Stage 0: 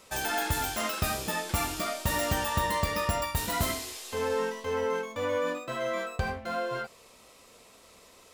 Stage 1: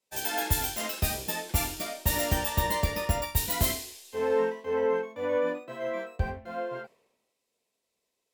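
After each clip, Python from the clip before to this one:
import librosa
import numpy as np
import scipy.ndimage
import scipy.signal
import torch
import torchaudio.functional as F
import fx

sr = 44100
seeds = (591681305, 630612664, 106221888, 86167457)

y = fx.graphic_eq_31(x, sr, hz=(400, 1250, 16000), db=(3, -10, 9))
y = fx.band_widen(y, sr, depth_pct=100)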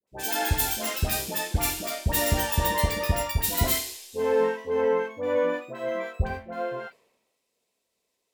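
y = fx.dispersion(x, sr, late='highs', ms=75.0, hz=1000.0)
y = y * librosa.db_to_amplitude(3.0)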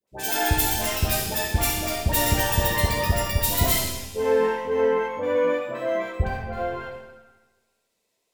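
y = fx.echo_feedback(x, sr, ms=67, feedback_pct=58, wet_db=-12.0)
y = fx.rev_freeverb(y, sr, rt60_s=1.3, hf_ratio=0.65, predelay_ms=15, drr_db=5.0)
y = y * librosa.db_to_amplitude(2.0)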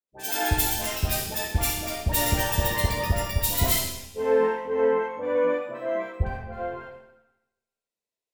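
y = fx.band_widen(x, sr, depth_pct=40)
y = y * librosa.db_to_amplitude(-2.5)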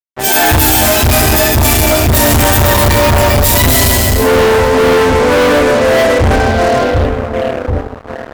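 y = fx.echo_split(x, sr, split_hz=700.0, low_ms=738, high_ms=156, feedback_pct=52, wet_db=-8)
y = fx.rev_fdn(y, sr, rt60_s=0.51, lf_ratio=1.1, hf_ratio=0.35, size_ms=24.0, drr_db=-5.5)
y = fx.fuzz(y, sr, gain_db=29.0, gate_db=-38.0)
y = y * librosa.db_to_amplitude(6.0)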